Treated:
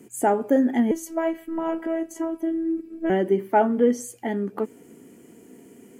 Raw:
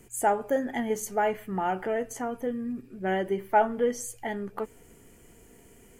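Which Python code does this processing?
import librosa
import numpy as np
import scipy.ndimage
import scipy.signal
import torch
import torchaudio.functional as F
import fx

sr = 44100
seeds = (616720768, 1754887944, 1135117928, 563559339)

y = scipy.signal.sosfilt(scipy.signal.butter(2, 150.0, 'highpass', fs=sr, output='sos'), x)
y = fx.peak_eq(y, sr, hz=270.0, db=13.0, octaves=1.4)
y = fx.robotise(y, sr, hz=327.0, at=(0.91, 3.1))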